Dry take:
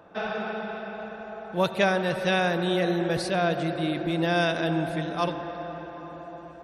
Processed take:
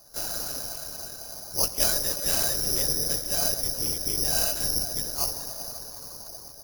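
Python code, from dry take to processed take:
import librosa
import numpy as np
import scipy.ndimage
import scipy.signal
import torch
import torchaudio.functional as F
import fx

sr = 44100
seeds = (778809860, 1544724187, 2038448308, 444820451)

y = fx.lpc_vocoder(x, sr, seeds[0], excitation='whisper', order=10)
y = (np.kron(scipy.signal.resample_poly(y, 1, 8), np.eye(8)[0]) * 8)[:len(y)]
y = y * 10.0 ** (-10.0 / 20.0)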